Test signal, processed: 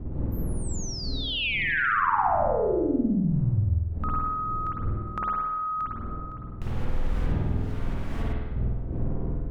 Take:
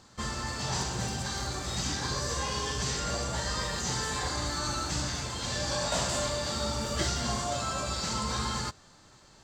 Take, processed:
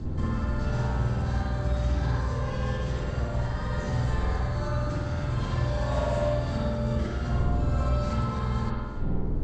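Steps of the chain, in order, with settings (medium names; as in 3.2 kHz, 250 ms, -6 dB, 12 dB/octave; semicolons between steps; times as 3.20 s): wind noise 280 Hz -43 dBFS; RIAA curve playback; compression 6:1, threshold -34 dBFS; feedback echo behind a band-pass 61 ms, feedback 65%, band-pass 960 Hz, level -4 dB; spring tank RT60 1.1 s, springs 49 ms, chirp 55 ms, DRR -5 dB; trim +4 dB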